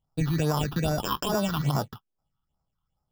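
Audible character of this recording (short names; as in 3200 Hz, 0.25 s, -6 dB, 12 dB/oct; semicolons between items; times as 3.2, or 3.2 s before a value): aliases and images of a low sample rate 2100 Hz, jitter 0%; phasing stages 6, 2.4 Hz, lowest notch 540–3000 Hz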